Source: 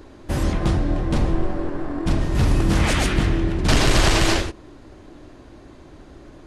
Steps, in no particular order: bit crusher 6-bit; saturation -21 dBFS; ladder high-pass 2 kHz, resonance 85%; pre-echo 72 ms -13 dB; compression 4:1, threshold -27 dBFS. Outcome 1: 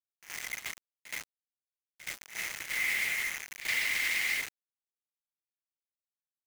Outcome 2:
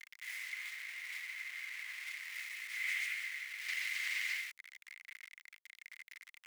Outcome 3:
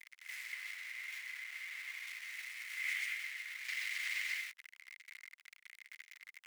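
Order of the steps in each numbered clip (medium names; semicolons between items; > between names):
ladder high-pass > compression > saturation > bit crusher > pre-echo; pre-echo > compression > bit crusher > ladder high-pass > saturation; compression > bit crusher > pre-echo > saturation > ladder high-pass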